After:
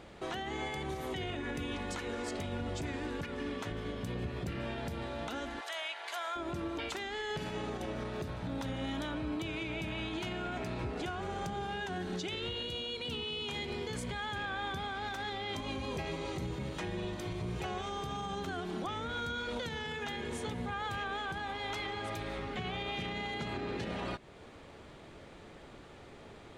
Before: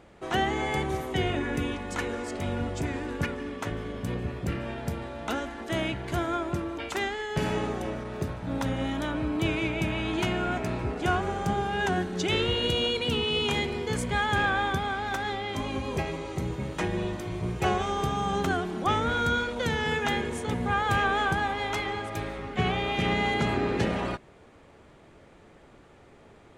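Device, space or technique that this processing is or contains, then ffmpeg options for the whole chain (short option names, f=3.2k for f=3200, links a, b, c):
stacked limiters: -filter_complex "[0:a]asplit=3[a][b][c];[a]afade=t=out:st=5.59:d=0.02[d];[b]highpass=f=700:w=0.5412,highpass=f=700:w=1.3066,afade=t=in:st=5.59:d=0.02,afade=t=out:st=6.35:d=0.02[e];[c]afade=t=in:st=6.35:d=0.02[f];[d][e][f]amix=inputs=3:normalize=0,equalizer=f=3.9k:t=o:w=0.96:g=5.5,alimiter=limit=-20dB:level=0:latency=1:release=339,alimiter=level_in=1dB:limit=-24dB:level=0:latency=1:release=104,volume=-1dB,alimiter=level_in=6.5dB:limit=-24dB:level=0:latency=1:release=300,volume=-6.5dB,volume=1.5dB"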